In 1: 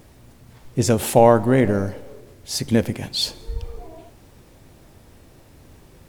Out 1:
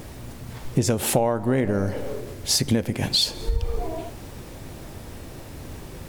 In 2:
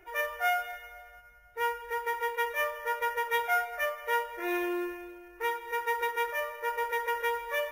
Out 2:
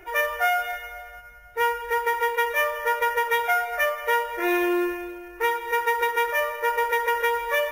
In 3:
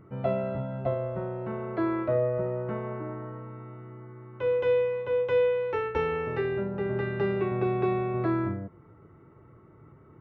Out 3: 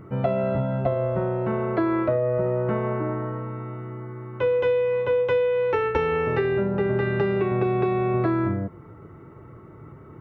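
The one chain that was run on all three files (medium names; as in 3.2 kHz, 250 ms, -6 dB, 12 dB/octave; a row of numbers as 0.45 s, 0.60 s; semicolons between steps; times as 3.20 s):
compression 12:1, threshold -28 dBFS; normalise loudness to -24 LUFS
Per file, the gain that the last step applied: +10.0 dB, +10.0 dB, +9.0 dB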